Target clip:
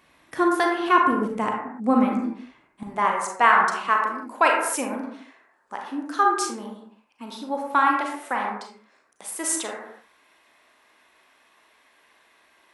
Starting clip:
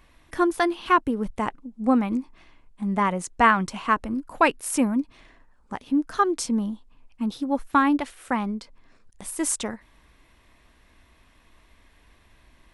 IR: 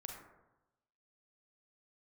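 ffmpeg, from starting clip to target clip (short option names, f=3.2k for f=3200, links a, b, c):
-filter_complex "[0:a]asetnsamples=n=441:p=0,asendcmd='2.83 highpass f 480',highpass=180[a];[1:a]atrim=start_sample=2205,afade=t=out:st=0.39:d=0.01,atrim=end_sample=17640,asetrate=48510,aresample=44100[b];[a][b]afir=irnorm=-1:irlink=0,volume=7dB"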